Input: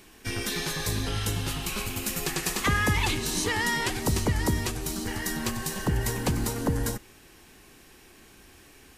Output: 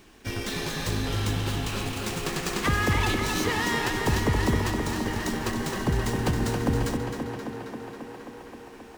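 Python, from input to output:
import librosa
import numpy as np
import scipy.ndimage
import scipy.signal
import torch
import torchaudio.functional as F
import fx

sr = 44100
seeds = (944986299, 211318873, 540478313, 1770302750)

p1 = fx.sample_hold(x, sr, seeds[0], rate_hz=2900.0, jitter_pct=0)
p2 = x + F.gain(torch.from_numpy(p1), -10.0).numpy()
p3 = fx.echo_tape(p2, sr, ms=267, feedback_pct=84, wet_db=-4.5, lp_hz=5200.0, drive_db=6.0, wow_cents=39)
p4 = fx.running_max(p3, sr, window=3)
y = F.gain(torch.from_numpy(p4), -1.5).numpy()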